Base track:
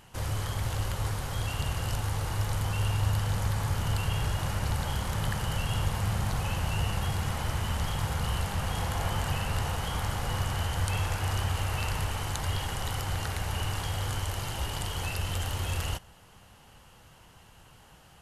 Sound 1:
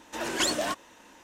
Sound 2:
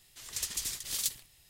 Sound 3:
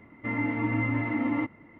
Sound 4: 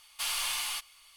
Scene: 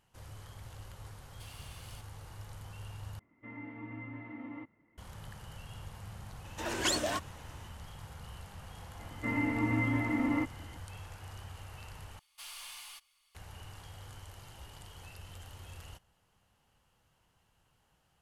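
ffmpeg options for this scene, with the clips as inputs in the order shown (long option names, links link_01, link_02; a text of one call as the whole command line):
ffmpeg -i bed.wav -i cue0.wav -i cue1.wav -i cue2.wav -i cue3.wav -filter_complex "[4:a]asplit=2[link_01][link_02];[3:a]asplit=2[link_03][link_04];[0:a]volume=-17.5dB[link_05];[link_01]acompressor=threshold=-35dB:ratio=6:attack=3.2:release=140:knee=1:detection=peak[link_06];[link_05]asplit=3[link_07][link_08][link_09];[link_07]atrim=end=3.194[link_10];[link_03]atrim=end=1.79,asetpts=PTS-STARTPTS,volume=-17dB[link_11];[link_08]atrim=start=4.976:end=12.194[link_12];[link_02]atrim=end=1.16,asetpts=PTS-STARTPTS,volume=-14.5dB[link_13];[link_09]atrim=start=13.346[link_14];[link_06]atrim=end=1.16,asetpts=PTS-STARTPTS,volume=-16.5dB,afade=type=in:duration=0.004:curve=hsin,afade=type=out:start_time=1.156:duration=0.004:curve=hsin,adelay=1210[link_15];[1:a]atrim=end=1.23,asetpts=PTS-STARTPTS,volume=-4dB,afade=type=in:duration=0.004:curve=hsin,afade=type=out:start_time=1.226:duration=0.004:curve=hsin,adelay=6450[link_16];[link_04]atrim=end=1.79,asetpts=PTS-STARTPTS,volume=-3dB,afade=type=in:duration=0.004:curve=hsin,afade=type=out:start_time=1.786:duration=0.004:curve=hsin,adelay=8990[link_17];[link_10][link_11]acrossfade=duration=0.004:curve1=hsin:curve2=hsin[link_18];[link_18][link_12]acrossfade=duration=0.004:curve1=hsin:curve2=hsin[link_19];[link_19][link_13]acrossfade=duration=0.004:curve1=hsin:curve2=hsin[link_20];[link_20][link_14]acrossfade=duration=0.004:curve1=hsin:curve2=hsin[link_21];[link_21][link_15][link_16][link_17]amix=inputs=4:normalize=0" out.wav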